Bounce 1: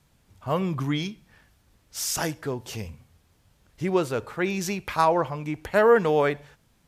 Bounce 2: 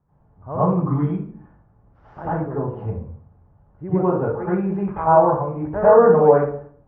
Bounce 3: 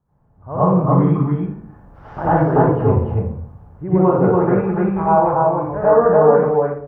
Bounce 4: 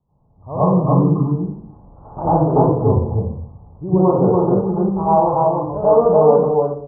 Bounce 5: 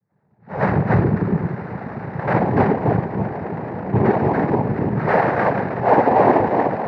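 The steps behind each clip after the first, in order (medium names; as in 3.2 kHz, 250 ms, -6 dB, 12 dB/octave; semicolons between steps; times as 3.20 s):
low-pass 1.2 kHz 24 dB/octave; reverberation RT60 0.55 s, pre-delay 79 ms, DRR -11 dB; trim -5 dB
level rider gain up to 15.5 dB; on a send: loudspeakers at several distances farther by 20 m -5 dB, 99 m -2 dB; on the sum: trim -2.5 dB
steep low-pass 1.1 kHz 48 dB/octave
echo with a slow build-up 108 ms, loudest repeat 8, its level -18 dB; noise-vocoded speech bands 6; trim -2.5 dB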